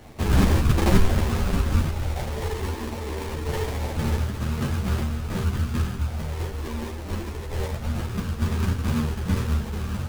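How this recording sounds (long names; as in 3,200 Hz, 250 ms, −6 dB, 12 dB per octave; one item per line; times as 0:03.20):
a quantiser's noise floor 8 bits, dither triangular
phaser sweep stages 6, 0.25 Hz, lowest notch 150–1,400 Hz
aliases and images of a low sample rate 1,400 Hz, jitter 20%
a shimmering, thickened sound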